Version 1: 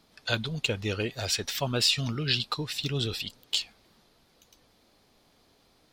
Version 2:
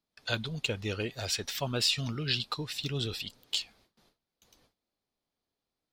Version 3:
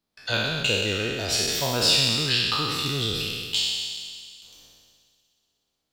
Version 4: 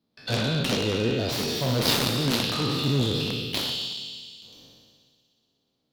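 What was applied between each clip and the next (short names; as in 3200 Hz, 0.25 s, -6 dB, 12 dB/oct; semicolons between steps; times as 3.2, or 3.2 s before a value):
gate with hold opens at -51 dBFS; gain -3.5 dB
spectral trails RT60 1.78 s; on a send: thin delay 61 ms, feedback 84%, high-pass 3400 Hz, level -14 dB; on the sum: gain +3 dB
added harmonics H 4 -13 dB, 7 -9 dB, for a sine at -7 dBFS; ten-band EQ 125 Hz +12 dB, 250 Hz +12 dB, 500 Hz +8 dB, 1000 Hz +3 dB, 4000 Hz +8 dB, 8000 Hz -6 dB; gain -8 dB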